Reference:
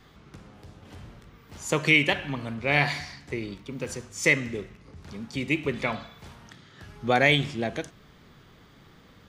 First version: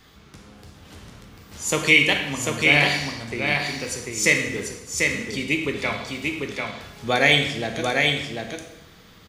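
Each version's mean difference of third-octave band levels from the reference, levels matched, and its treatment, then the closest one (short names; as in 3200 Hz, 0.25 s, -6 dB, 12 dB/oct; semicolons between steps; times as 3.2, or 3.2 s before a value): 7.0 dB: high shelf 2900 Hz +9 dB; echo 0.743 s -3.5 dB; plate-style reverb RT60 0.89 s, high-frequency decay 0.95×, DRR 4.5 dB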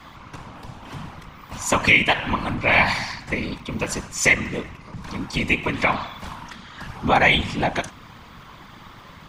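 5.0 dB: whisperiser; compressor 2:1, threshold -29 dBFS, peak gain reduction 8.5 dB; fifteen-band EQ 400 Hz -7 dB, 1000 Hz +10 dB, 2500 Hz +3 dB; gain +9 dB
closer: second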